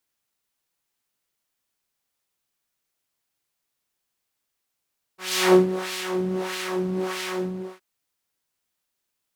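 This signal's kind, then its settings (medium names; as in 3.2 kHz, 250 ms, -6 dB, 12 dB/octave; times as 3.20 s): synth patch with filter wobble F#4, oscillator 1 triangle, oscillator 2 saw, sub -7.5 dB, noise 0 dB, filter bandpass, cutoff 510 Hz, Q 1, filter envelope 1 oct, filter decay 1.48 s, attack 350 ms, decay 0.13 s, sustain -12 dB, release 0.43 s, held 2.19 s, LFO 1.6 Hz, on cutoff 1.9 oct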